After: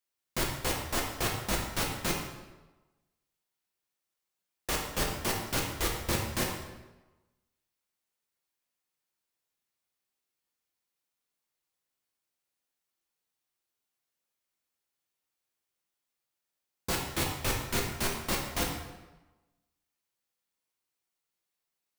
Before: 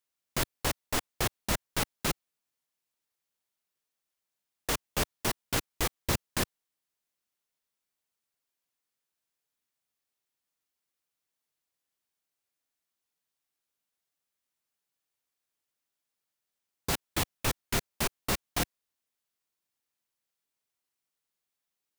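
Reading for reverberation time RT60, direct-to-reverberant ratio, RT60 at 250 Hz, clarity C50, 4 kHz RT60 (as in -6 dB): 1.1 s, -1.5 dB, 1.1 s, 3.5 dB, 0.85 s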